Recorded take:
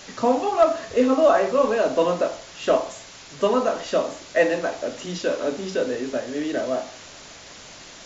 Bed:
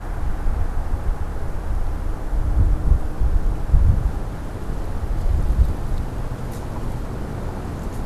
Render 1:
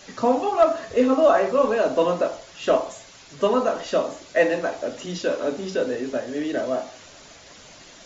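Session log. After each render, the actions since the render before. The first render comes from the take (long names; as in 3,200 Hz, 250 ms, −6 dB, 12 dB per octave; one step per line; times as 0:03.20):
broadband denoise 6 dB, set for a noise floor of −43 dBFS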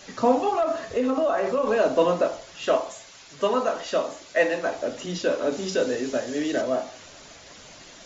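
0:00.52–0:01.67: downward compressor, threshold −19 dBFS
0:02.65–0:04.66: low-shelf EQ 470 Hz −6.5 dB
0:05.52–0:06.62: high-shelf EQ 4,800 Hz +10.5 dB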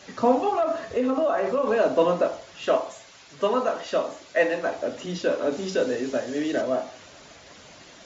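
high-pass filter 50 Hz
high-shelf EQ 5,600 Hz −7.5 dB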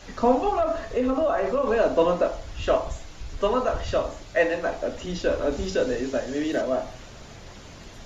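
mix in bed −18 dB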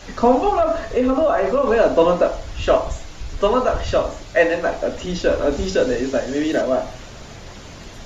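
level +6 dB
brickwall limiter −3 dBFS, peak gain reduction 1.5 dB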